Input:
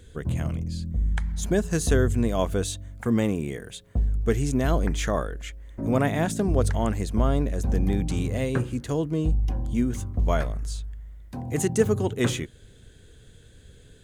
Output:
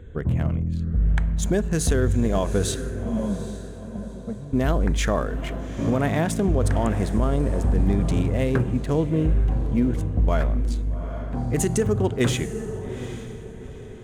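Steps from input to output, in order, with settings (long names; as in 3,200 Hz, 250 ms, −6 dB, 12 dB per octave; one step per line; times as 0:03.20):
adaptive Wiener filter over 9 samples
in parallel at −3 dB: downward compressor, threshold −35 dBFS, peak gain reduction 19 dB
0:02.91–0:04.53: on the sum: pair of resonant band-passes 350 Hz, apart 1.6 octaves
feedback delay with all-pass diffusion 824 ms, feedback 40%, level −11.5 dB
on a send at −20 dB: convolution reverb, pre-delay 3 ms
on the sum: brickwall limiter −14.5 dBFS, peak gain reduction 8 dB
one half of a high-frequency compander decoder only
level +2.5 dB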